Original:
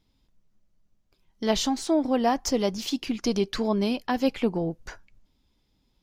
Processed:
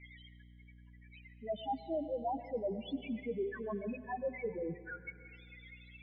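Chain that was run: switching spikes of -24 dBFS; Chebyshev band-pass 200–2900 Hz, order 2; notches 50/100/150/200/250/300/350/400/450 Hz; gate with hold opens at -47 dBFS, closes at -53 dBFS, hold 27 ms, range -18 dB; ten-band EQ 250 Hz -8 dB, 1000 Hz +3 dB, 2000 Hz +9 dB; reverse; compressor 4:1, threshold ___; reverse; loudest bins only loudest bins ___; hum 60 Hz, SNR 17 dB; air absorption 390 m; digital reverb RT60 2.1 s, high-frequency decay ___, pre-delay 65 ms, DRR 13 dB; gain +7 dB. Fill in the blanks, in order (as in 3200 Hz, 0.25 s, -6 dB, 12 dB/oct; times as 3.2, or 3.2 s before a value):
-37 dBFS, 2, 0.95×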